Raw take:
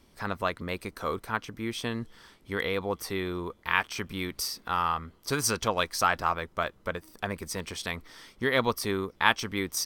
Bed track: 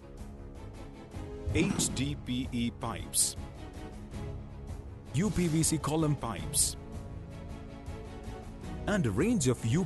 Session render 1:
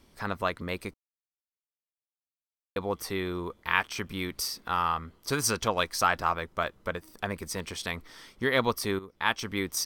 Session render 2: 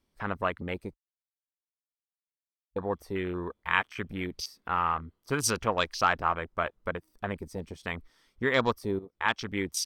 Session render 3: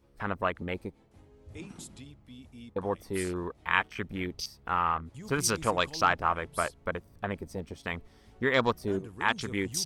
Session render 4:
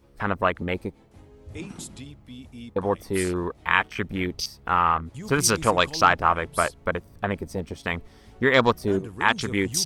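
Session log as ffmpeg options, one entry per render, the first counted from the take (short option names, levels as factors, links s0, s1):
-filter_complex "[0:a]asplit=4[s0][s1][s2][s3];[s0]atrim=end=0.94,asetpts=PTS-STARTPTS,afade=t=out:st=0.936:d=0.004:c=hsin[s4];[s1]atrim=start=0.94:end=2.76,asetpts=PTS-STARTPTS,volume=0[s5];[s2]atrim=start=2.76:end=8.99,asetpts=PTS-STARTPTS,afade=t=in:d=0.004:c=hsin,afade=t=out:st=6.226:d=0.004:c=hsin:silence=0.199526[s6];[s3]atrim=start=8.99,asetpts=PTS-STARTPTS,afade=t=in:d=0.55:silence=0.199526[s7];[s4][s5][s6][s7]concat=n=4:v=0:a=1"
-af "afwtdn=0.0158"
-filter_complex "[1:a]volume=0.168[s0];[0:a][s0]amix=inputs=2:normalize=0"
-af "volume=2.24,alimiter=limit=0.708:level=0:latency=1"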